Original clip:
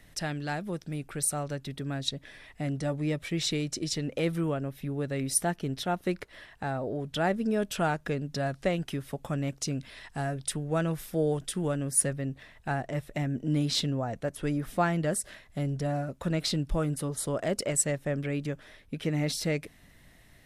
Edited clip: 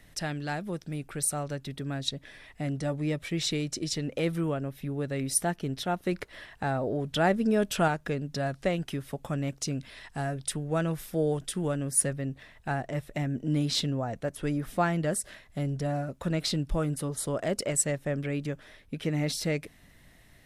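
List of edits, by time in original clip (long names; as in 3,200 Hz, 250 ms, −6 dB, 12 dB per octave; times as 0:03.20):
0:06.12–0:07.88: clip gain +3 dB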